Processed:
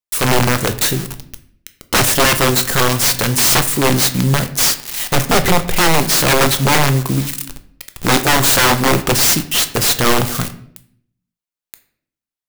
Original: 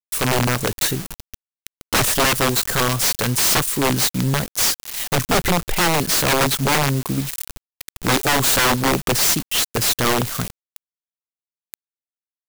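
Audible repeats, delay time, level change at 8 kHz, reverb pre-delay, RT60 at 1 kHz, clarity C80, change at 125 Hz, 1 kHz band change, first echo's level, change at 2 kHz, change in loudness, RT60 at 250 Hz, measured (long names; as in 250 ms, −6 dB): no echo audible, no echo audible, +4.5 dB, 6 ms, 0.55 s, 17.0 dB, +5.5 dB, +4.5 dB, no echo audible, +4.5 dB, +4.5 dB, 0.95 s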